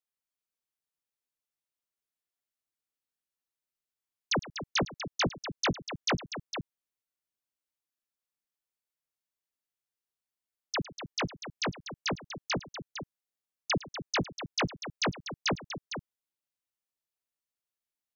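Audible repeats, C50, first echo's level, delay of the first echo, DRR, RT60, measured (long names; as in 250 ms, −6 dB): 3, no reverb audible, −18.0 dB, 108 ms, no reverb audible, no reverb audible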